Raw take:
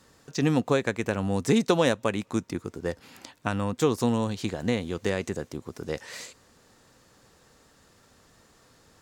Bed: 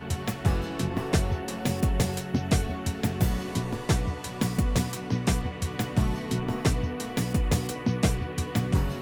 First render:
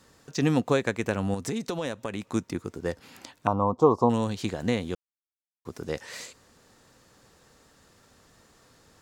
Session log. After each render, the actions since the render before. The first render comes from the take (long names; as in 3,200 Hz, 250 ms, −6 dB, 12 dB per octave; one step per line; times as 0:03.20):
0:01.34–0:02.28: downward compressor 4 to 1, threshold −28 dBFS
0:03.47–0:04.10: drawn EQ curve 240 Hz 0 dB, 1,100 Hz +11 dB, 1,700 Hz −28 dB, 5,500 Hz −12 dB, 12,000 Hz −29 dB
0:04.95–0:05.65: silence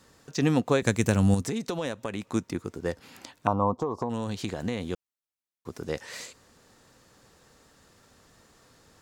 0:00.82–0:01.42: bass and treble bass +10 dB, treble +12 dB
0:03.79–0:04.87: downward compressor, threshold −25 dBFS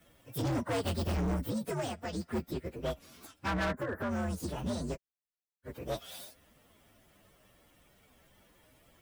partials spread apart or drawn together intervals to 130%
hard clipping −29 dBFS, distortion −6 dB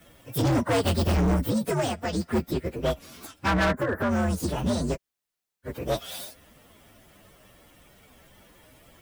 level +9 dB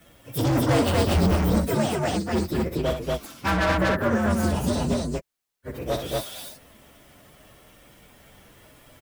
loudspeakers that aren't time-aligned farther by 21 metres −8 dB, 82 metres −1 dB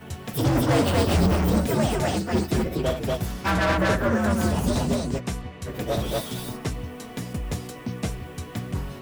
mix in bed −5 dB